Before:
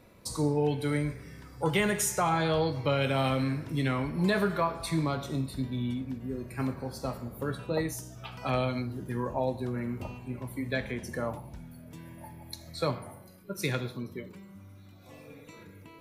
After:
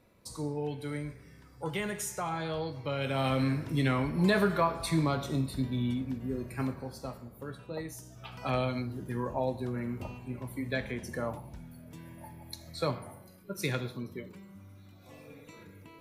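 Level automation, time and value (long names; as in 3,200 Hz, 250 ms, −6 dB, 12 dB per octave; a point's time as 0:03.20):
0:02.85 −7.5 dB
0:03.45 +1 dB
0:06.41 +1 dB
0:07.33 −8.5 dB
0:07.83 −8.5 dB
0:08.39 −1.5 dB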